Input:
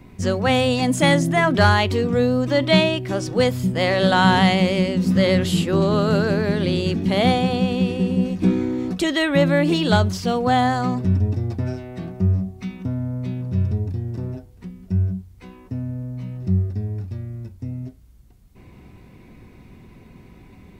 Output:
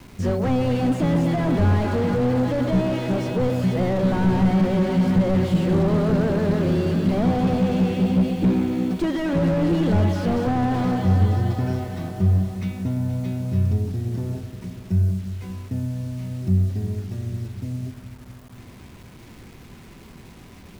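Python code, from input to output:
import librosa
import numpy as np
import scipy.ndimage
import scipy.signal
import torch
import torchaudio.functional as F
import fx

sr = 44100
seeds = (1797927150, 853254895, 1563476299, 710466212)

y = fx.echo_alternate(x, sr, ms=118, hz=880.0, feedback_pct=85, wet_db=-10.5)
y = fx.quant_dither(y, sr, seeds[0], bits=8, dither='none')
y = fx.slew_limit(y, sr, full_power_hz=45.0)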